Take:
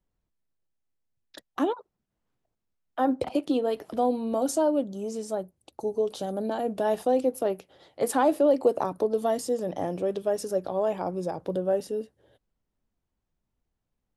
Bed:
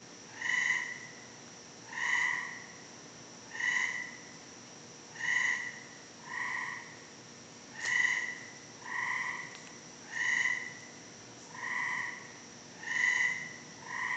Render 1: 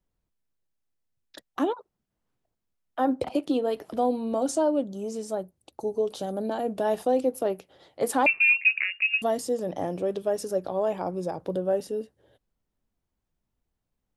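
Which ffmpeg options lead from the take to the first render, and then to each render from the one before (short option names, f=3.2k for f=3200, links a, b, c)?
-filter_complex "[0:a]asettb=1/sr,asplit=3[a][b][c];[a]atrim=end=4.324[d];[b]atrim=start=4.32:end=4.84,asetpts=PTS-STARTPTS,afade=t=in:d=0.004:c=qsin,afade=t=out:st=0.516:d=0.004:c=qsin,lowpass=f=10k:w=0.5412,lowpass=f=10k:w=1.3066[e];[c]atrim=start=4.836[f];[d][e]acrossfade=d=0.004:c1=hsin:c2=qsin[g];[g][f]acrossfade=d=0.004:c1=qsin:c2=hsin,asettb=1/sr,asplit=3[h][i][j];[h]atrim=end=8.264[k];[i]atrim=start=8.26:end=9.22,asetpts=PTS-STARTPTS,afade=t=in:d=0.004:c=qsin,afade=t=out:st=0.956:d=0.004:c=qsin,lowpass=f=2.6k:t=q:w=0.5098,lowpass=f=2.6k:t=q:w=0.6013,lowpass=f=2.6k:t=q:w=0.9,lowpass=f=2.6k:t=q:w=2.563,afreqshift=-3000[l];[j]atrim=start=9.216[m];[k][l]acrossfade=d=0.004:c1=hsin:c2=qsin[n];[n][m]acrossfade=d=0.004:c1=qsin:c2=hsin"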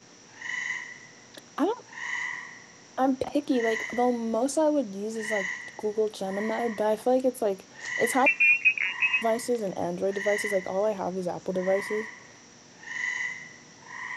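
-filter_complex "[1:a]volume=-1.5dB[a];[0:a][a]amix=inputs=2:normalize=0"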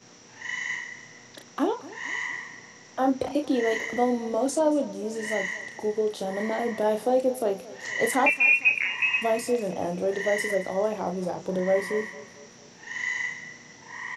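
-filter_complex "[0:a]asplit=2[a][b];[b]adelay=33,volume=-6.5dB[c];[a][c]amix=inputs=2:normalize=0,aecho=1:1:227|454|681|908:0.119|0.0582|0.0285|0.014"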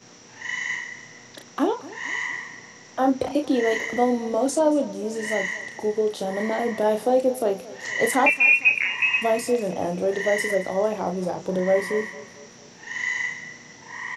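-af "volume=3dB"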